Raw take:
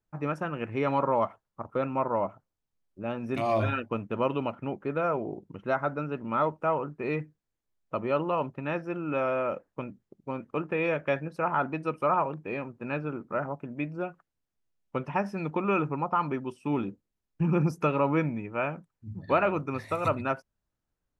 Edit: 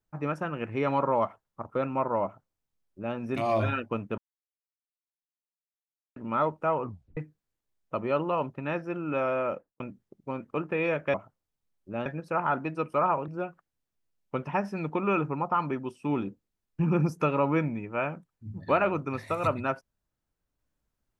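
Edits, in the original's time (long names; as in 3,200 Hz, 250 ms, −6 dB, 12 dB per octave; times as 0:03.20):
0:02.24–0:03.16: duplicate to 0:11.14
0:04.18–0:06.16: silence
0:06.82: tape stop 0.35 s
0:09.49–0:09.80: fade out and dull
0:12.36–0:13.89: remove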